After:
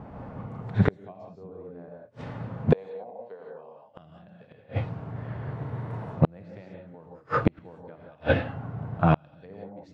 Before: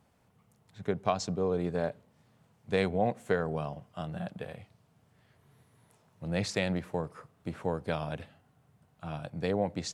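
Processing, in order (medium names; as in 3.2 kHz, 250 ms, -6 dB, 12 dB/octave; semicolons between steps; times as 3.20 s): 2.72–3.84 s: cabinet simulation 330–5100 Hz, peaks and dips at 340 Hz -7 dB, 490 Hz +5 dB, 930 Hz +6 dB, 1.4 kHz -7 dB, 2 kHz -5 dB, 4.4 kHz +6 dB; 7.95–9.15 s: compression 1.5:1, threshold -49 dBFS, peak gain reduction 6.5 dB; low-pass that closes with the level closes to 1.4 kHz, closed at -28.5 dBFS; 0.91–1.31 s: peaking EQ 1.4 kHz -14.5 dB 0.56 oct; gated-style reverb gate 200 ms rising, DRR -1.5 dB; level-controlled noise filter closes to 1.1 kHz, open at -27.5 dBFS; inverted gate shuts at -30 dBFS, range -41 dB; loudness maximiser +30.5 dB; trim -5.5 dB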